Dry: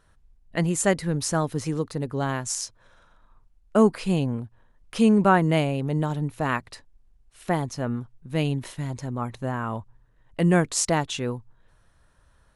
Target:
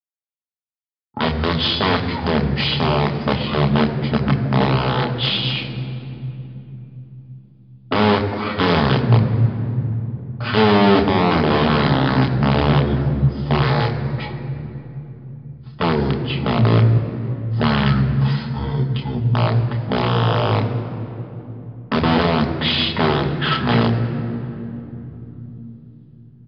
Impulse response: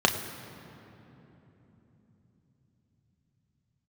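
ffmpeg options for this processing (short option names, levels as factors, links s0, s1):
-filter_complex "[0:a]agate=range=0.00126:threshold=0.00501:ratio=16:detection=peak,highpass=130,aecho=1:1:4:0.67,acontrast=84,alimiter=limit=0.251:level=0:latency=1:release=108,aeval=exprs='0.251*(cos(1*acos(clip(val(0)/0.251,-1,1)))-cos(1*PI/2))+0.0112*(cos(3*acos(clip(val(0)/0.251,-1,1)))-cos(3*PI/2))+0.00562*(cos(5*acos(clip(val(0)/0.251,-1,1)))-cos(5*PI/2))+0.0112*(cos(7*acos(clip(val(0)/0.251,-1,1)))-cos(7*PI/2))':c=same,aeval=exprs='(mod(5.31*val(0)+1,2)-1)/5.31':c=same,asetrate=20903,aresample=44100[s0];[1:a]atrim=start_sample=2205,asetrate=48510,aresample=44100[s1];[s0][s1]afir=irnorm=-1:irlink=0,aresample=11025,aresample=44100,volume=0.299"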